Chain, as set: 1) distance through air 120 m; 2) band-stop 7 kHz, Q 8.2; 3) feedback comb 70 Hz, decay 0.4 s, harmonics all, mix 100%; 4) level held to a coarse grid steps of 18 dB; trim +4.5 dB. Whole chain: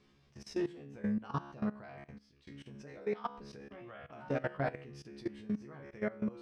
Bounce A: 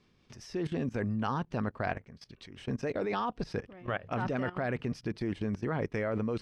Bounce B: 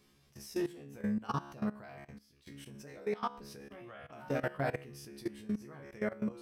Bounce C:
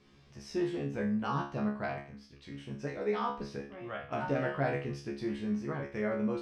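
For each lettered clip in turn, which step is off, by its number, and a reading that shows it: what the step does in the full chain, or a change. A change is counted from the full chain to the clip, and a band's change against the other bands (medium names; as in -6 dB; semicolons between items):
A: 3, 250 Hz band -3.5 dB; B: 1, 4 kHz band +2.5 dB; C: 4, crest factor change -2.5 dB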